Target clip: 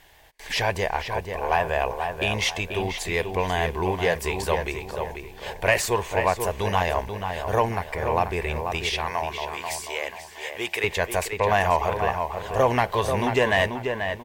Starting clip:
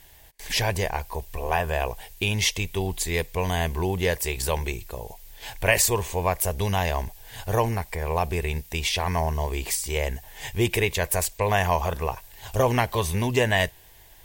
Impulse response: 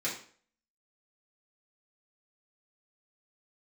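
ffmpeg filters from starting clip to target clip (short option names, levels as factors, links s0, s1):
-filter_complex "[0:a]asplit=2[s0][s1];[s1]highpass=f=720:p=1,volume=3.55,asoftclip=type=tanh:threshold=0.531[s2];[s0][s2]amix=inputs=2:normalize=0,lowpass=f=1700:p=1,volume=0.501,asettb=1/sr,asplit=3[s3][s4][s5];[s3]atrim=end=8.864[s6];[s4]atrim=start=8.86:end=10.84,asetpts=PTS-STARTPTS,afade=t=in:d=0.004:c=qsin,afade=t=out:st=1.976:d=0.004:c=qsin,highpass=f=1000:p=1[s7];[s5]atrim=start=10.836[s8];[s6][s7]acrossfade=d=0.004:c1=hsin:c2=qsin[s9];[s9][s8]acrossfade=d=0.004:c1=qsin:c2=hsin,asplit=2[s10][s11];[s11]adelay=487,lowpass=f=2900:p=1,volume=0.501,asplit=2[s12][s13];[s13]adelay=487,lowpass=f=2900:p=1,volume=0.36,asplit=2[s14][s15];[s15]adelay=487,lowpass=f=2900:p=1,volume=0.36,asplit=2[s16][s17];[s17]adelay=487,lowpass=f=2900:p=1,volume=0.36[s18];[s10][s12][s14][s16][s18]amix=inputs=5:normalize=0"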